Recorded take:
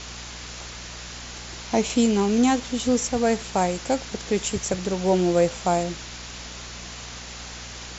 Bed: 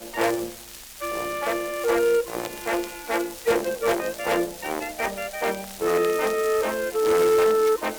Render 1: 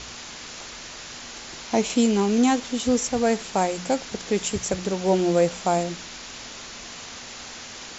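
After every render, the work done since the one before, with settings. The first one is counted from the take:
hum removal 60 Hz, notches 3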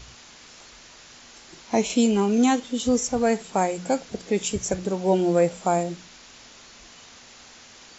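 noise reduction from a noise print 9 dB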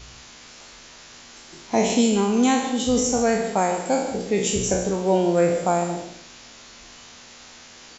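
peak hold with a decay on every bin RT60 0.75 s
on a send: single-tap delay 150 ms −11.5 dB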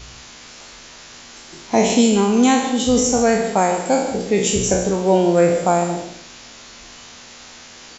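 level +4.5 dB

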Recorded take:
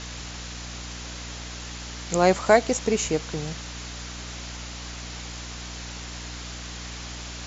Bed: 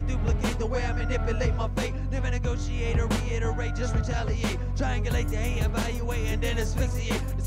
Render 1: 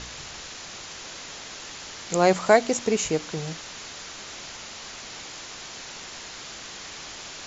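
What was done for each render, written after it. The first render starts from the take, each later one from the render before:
hum removal 60 Hz, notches 5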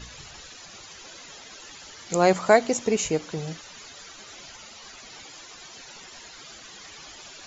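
broadband denoise 13 dB, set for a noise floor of −40 dBFS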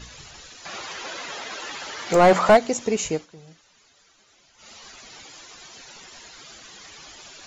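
0:00.65–0:02.57: mid-hump overdrive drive 23 dB, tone 1,400 Hz, clips at −4.5 dBFS
0:03.13–0:04.70: duck −14.5 dB, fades 0.14 s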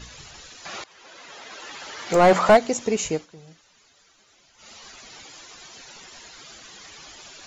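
0:00.84–0:02.36: fade in, from −21 dB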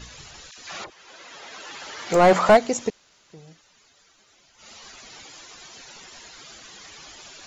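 0:00.51–0:01.71: all-pass dispersion lows, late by 66 ms, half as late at 1,200 Hz
0:02.90–0:03.30: fill with room tone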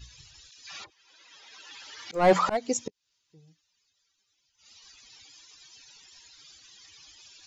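spectral dynamics exaggerated over time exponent 1.5
volume swells 233 ms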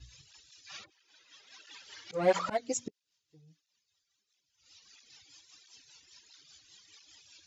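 rotating-speaker cabinet horn 5 Hz
through-zero flanger with one copy inverted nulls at 1.5 Hz, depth 5.3 ms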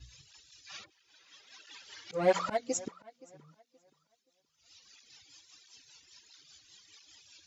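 tape delay 524 ms, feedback 29%, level −20.5 dB, low-pass 4,200 Hz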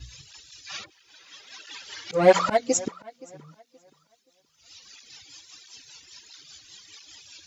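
level +10 dB

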